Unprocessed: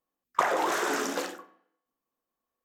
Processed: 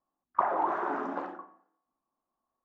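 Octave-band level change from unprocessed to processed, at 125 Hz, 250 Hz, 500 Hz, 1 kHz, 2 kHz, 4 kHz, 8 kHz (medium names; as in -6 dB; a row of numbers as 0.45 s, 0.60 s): no reading, -3.0 dB, -4.5 dB, -0.5 dB, -9.5 dB, under -20 dB, under -35 dB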